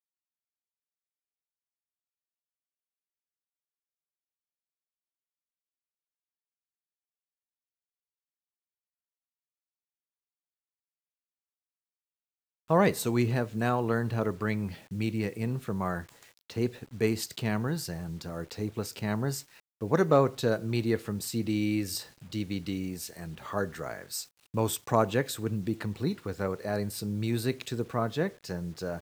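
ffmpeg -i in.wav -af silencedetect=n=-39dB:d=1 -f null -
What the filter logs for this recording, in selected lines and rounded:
silence_start: 0.00
silence_end: 12.70 | silence_duration: 12.70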